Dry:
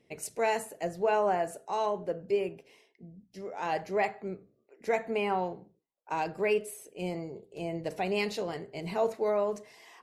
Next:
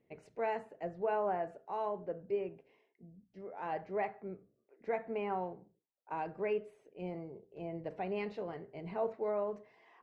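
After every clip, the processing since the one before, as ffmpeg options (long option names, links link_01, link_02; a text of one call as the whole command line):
ffmpeg -i in.wav -af "lowpass=1900,volume=-6.5dB" out.wav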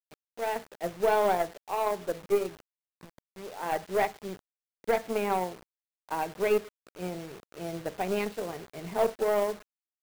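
ffmpeg -i in.wav -af "dynaudnorm=framelen=190:gausssize=5:maxgain=9dB,acrusher=bits=6:mix=0:aa=0.000001,aeval=exprs='0.2*(cos(1*acos(clip(val(0)/0.2,-1,1)))-cos(1*PI/2))+0.0112*(cos(4*acos(clip(val(0)/0.2,-1,1)))-cos(4*PI/2))+0.0141*(cos(7*acos(clip(val(0)/0.2,-1,1)))-cos(7*PI/2))':channel_layout=same" out.wav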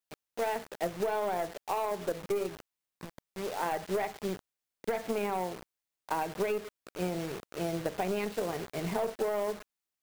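ffmpeg -i in.wav -af "alimiter=limit=-21.5dB:level=0:latency=1:release=14,acompressor=threshold=-34dB:ratio=6,volume=6dB" out.wav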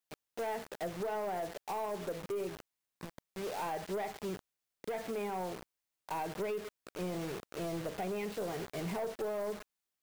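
ffmpeg -i in.wav -af "asoftclip=type=tanh:threshold=-32dB" out.wav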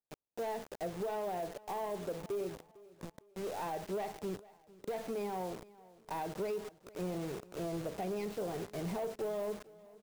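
ffmpeg -i in.wav -filter_complex "[0:a]acrossover=split=1000[link_01][link_02];[link_02]acrusher=bits=6:dc=4:mix=0:aa=0.000001[link_03];[link_01][link_03]amix=inputs=2:normalize=0,aecho=1:1:453|906|1359:0.0891|0.0348|0.0136" out.wav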